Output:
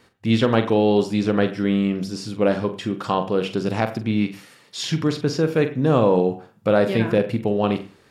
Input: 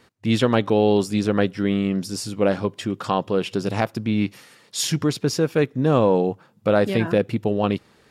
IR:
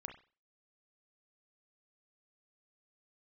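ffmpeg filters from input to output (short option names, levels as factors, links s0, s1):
-filter_complex "[0:a]acrossover=split=5500[s0][s1];[s1]acompressor=threshold=0.00447:ratio=4:attack=1:release=60[s2];[s0][s2]amix=inputs=2:normalize=0,asplit=2[s3][s4];[1:a]atrim=start_sample=2205,adelay=44[s5];[s4][s5]afir=irnorm=-1:irlink=0,volume=0.562[s6];[s3][s6]amix=inputs=2:normalize=0"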